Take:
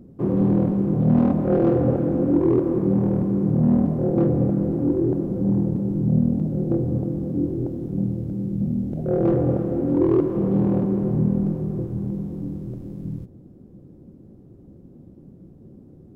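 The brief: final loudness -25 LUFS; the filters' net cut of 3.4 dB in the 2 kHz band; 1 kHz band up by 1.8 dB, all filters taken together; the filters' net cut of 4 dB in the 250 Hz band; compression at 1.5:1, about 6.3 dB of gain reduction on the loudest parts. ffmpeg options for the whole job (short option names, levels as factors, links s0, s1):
-af "equalizer=f=250:t=o:g=-6,equalizer=f=1000:t=o:g=4.5,equalizer=f=2000:t=o:g=-7,acompressor=threshold=0.0178:ratio=1.5,volume=1.88"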